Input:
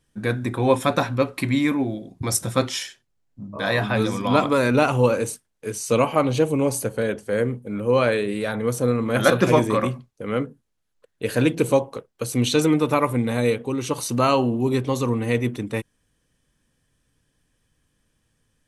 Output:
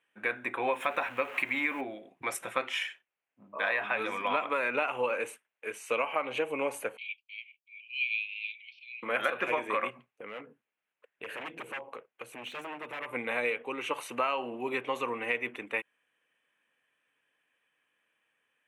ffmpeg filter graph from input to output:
-filter_complex "[0:a]asettb=1/sr,asplit=3[a][b][c];[a]atrim=end=0.734[d];[b]atrim=start=0.73:end=1.81,asetpts=PTS-STARTPTS,afade=t=in:d=0.004:c=qsin,afade=t=out:st=1.076:d=0.004:c=qsin,aeval=exprs='val(0)+0.5*0.0224*sgn(val(0))':c=same,acrusher=bits=8:dc=4:mix=0:aa=0.000001[e];[c]atrim=start=1.806[f];[d][e]acrossfade=d=0.004:c1=hsin:c2=qsin[g];[g][f]acrossfade=d=0.004:c1=qsin:c2=hsin,asettb=1/sr,asplit=3[h][i][j];[h]atrim=end=6.974[k];[i]atrim=start=6.97:end=9.03,asetpts=PTS-STARTPTS,afade=t=in:d=0.004:c=qsin,afade=t=out:st=2.056:d=0.004:c=qsin,agate=range=-33dB:threshold=-29dB:ratio=3:release=100:detection=peak,asuperpass=centerf=3500:order=20:qfactor=1.2[l];[j]atrim=start=9.026[m];[k][l]acrossfade=d=0.004:c1=hsin:c2=qsin[n];[n][m]acrossfade=d=0.004:c1=qsin:c2=hsin,asettb=1/sr,asplit=3[o][p][q];[o]atrim=end=9.904[r];[p]atrim=start=9.9:end=13.13,asetpts=PTS-STARTPTS,afade=t=in:d=0.004:c=qsin,afade=t=out:st=3.226:d=0.004:c=qsin,aeval=exprs='0.126*(abs(mod(val(0)/0.126+3,4)-2)-1)':c=same,acompressor=threshold=-33dB:ratio=10:attack=3.2:release=140:knee=1:detection=peak,lowshelf=f=250:g=10[s];[q]atrim=start=13.126[t];[r][s]acrossfade=d=0.004:c1=hsin:c2=qsin[u];[u][t]acrossfade=d=0.004:c1=qsin:c2=hsin,highpass=610,highshelf=f=3.5k:t=q:w=3:g=-11.5,acompressor=threshold=-23dB:ratio=10,volume=-2.5dB"

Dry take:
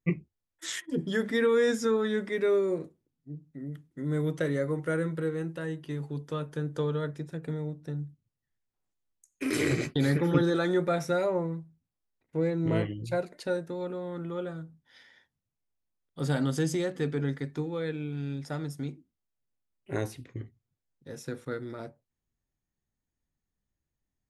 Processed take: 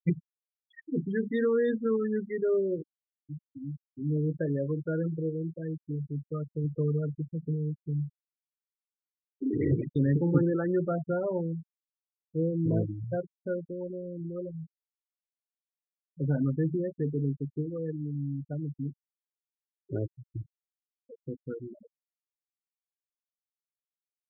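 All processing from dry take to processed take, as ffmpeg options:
-filter_complex "[0:a]asettb=1/sr,asplit=3[a][b][c];[a]atrim=end=6.644[d];[b]atrim=start=6.64:end=9.74,asetpts=PTS-STARTPTS,afade=t=in:d=0.004:c=qsin,afade=t=out:st=3.096:d=0.004:c=qsin,lowpass=2.1k,lowshelf=f=92:g=9[e];[c]atrim=start=9.736[f];[d][e]acrossfade=d=0.004:c1=hsin:c2=qsin[g];[g][f]acrossfade=d=0.004:c1=qsin:c2=hsin,lowpass=4.1k,afftfilt=real='re*gte(hypot(re,im),0.0708)':imag='im*gte(hypot(re,im),0.0708)':win_size=1024:overlap=0.75,lowshelf=f=470:g=9,volume=-6.5dB"

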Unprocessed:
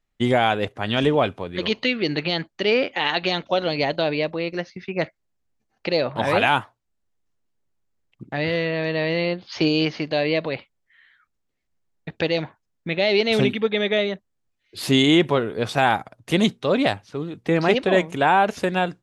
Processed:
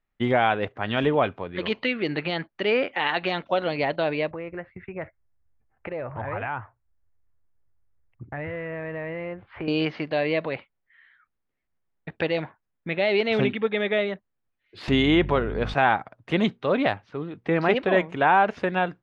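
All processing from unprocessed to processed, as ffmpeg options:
-filter_complex "[0:a]asettb=1/sr,asplit=3[a][b][c];[a]atrim=end=4.314[d];[b]atrim=start=4.31:end=9.68,asetpts=PTS-STARTPTS,afade=t=in:d=0.004:c=qsin,afade=t=out:st=5.366:d=0.004:c=qsin,lowpass=f=2.2k:w=0.5412,lowpass=f=2.2k:w=1.3066,lowshelf=f=130:t=q:w=1.5:g=11.5,acompressor=threshold=-29dB:ratio=2.5:attack=3.2:release=140:knee=1:detection=peak[e];[c]atrim=start=9.676[f];[d][e]acrossfade=d=0.004:c1=hsin:c2=qsin[g];[g][f]acrossfade=d=0.004:c1=qsin:c2=hsin,asettb=1/sr,asplit=3[h][i][j];[h]atrim=end=14.884[k];[i]atrim=start=14.88:end=15.74,asetpts=PTS-STARTPTS,afade=t=in:d=0.004:c=qsin,afade=t=out:st=0.856:d=0.004:c=qsin,acompressor=mode=upward:threshold=-19dB:ratio=2.5:attack=3.2:release=140:knee=2.83:detection=peak,aeval=exprs='val(0)+0.0447*(sin(2*PI*50*n/s)+sin(2*PI*2*50*n/s)/2+sin(2*PI*3*50*n/s)/3+sin(2*PI*4*50*n/s)/4+sin(2*PI*5*50*n/s)/5)':c=same[l];[j]atrim=start=15.736[m];[k][l]acrossfade=d=0.004:c1=hsin:c2=qsin[n];[n][m]acrossfade=d=0.004:c1=qsin:c2=hsin,lowpass=1.9k,tiltshelf=f=1.1k:g=-4"

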